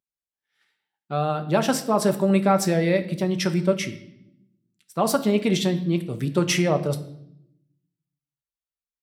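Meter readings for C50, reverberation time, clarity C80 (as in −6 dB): 14.0 dB, 0.75 s, 16.0 dB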